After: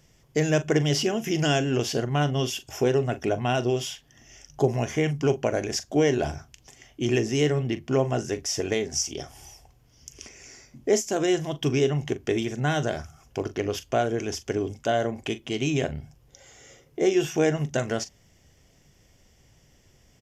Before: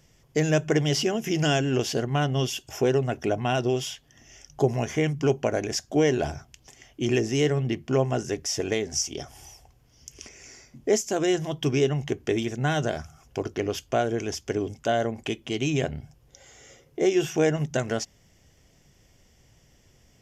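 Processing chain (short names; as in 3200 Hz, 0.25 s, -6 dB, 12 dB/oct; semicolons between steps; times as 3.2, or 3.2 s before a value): doubler 41 ms -13.5 dB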